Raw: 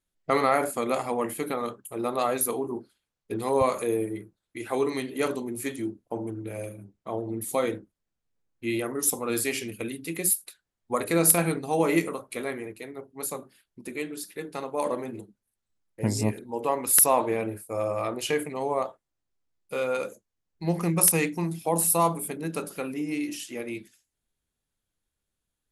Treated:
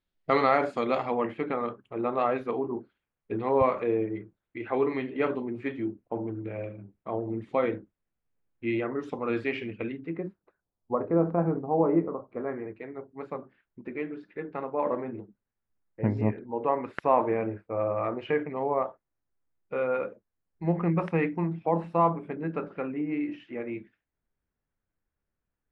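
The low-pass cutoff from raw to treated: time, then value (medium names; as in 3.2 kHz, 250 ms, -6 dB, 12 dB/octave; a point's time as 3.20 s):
low-pass 24 dB/octave
0.81 s 4.5 kHz
1.45 s 2.6 kHz
9.87 s 2.6 kHz
10.34 s 1.1 kHz
12.26 s 1.1 kHz
12.79 s 2.1 kHz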